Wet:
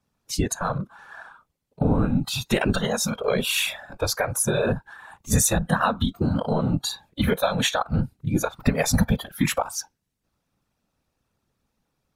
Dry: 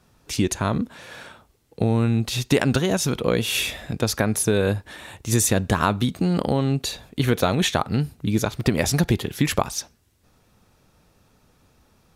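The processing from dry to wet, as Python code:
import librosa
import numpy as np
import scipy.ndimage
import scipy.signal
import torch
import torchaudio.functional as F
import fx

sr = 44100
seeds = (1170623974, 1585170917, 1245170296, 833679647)

p1 = 10.0 ** (-13.0 / 20.0) * np.tanh(x / 10.0 ** (-13.0 / 20.0))
p2 = x + (p1 * 10.0 ** (-6.0 / 20.0))
p3 = fx.peak_eq(p2, sr, hz=350.0, db=-7.0, octaves=0.28)
p4 = fx.whisperise(p3, sr, seeds[0])
p5 = fx.noise_reduce_blind(p4, sr, reduce_db=16)
y = p5 * 10.0 ** (-3.0 / 20.0)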